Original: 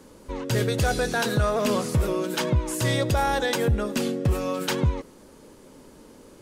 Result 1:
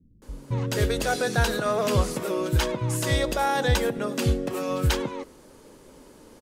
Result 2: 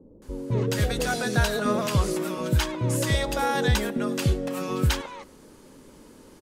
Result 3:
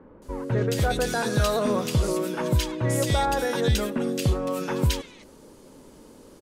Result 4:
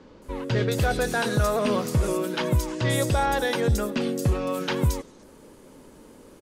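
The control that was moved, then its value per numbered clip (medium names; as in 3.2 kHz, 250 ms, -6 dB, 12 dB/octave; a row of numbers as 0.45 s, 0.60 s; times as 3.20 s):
bands offset in time, split: 200 Hz, 590 Hz, 1.9 kHz, 5.1 kHz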